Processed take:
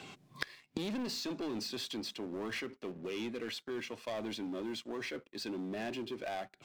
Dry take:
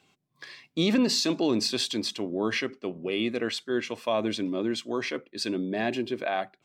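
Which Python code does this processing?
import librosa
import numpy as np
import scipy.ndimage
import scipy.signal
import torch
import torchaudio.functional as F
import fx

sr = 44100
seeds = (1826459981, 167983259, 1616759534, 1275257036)

p1 = fx.high_shelf(x, sr, hz=11000.0, db=-10.5)
p2 = fx.leveller(p1, sr, passes=2)
p3 = np.clip(10.0 ** (27.0 / 20.0) * p2, -1.0, 1.0) / 10.0 ** (27.0 / 20.0)
p4 = p2 + F.gain(torch.from_numpy(p3), -3.0).numpy()
p5 = fx.gate_flip(p4, sr, shuts_db=-31.0, range_db=-27)
p6 = fx.band_squash(p5, sr, depth_pct=40)
y = F.gain(torch.from_numpy(p6), 8.0).numpy()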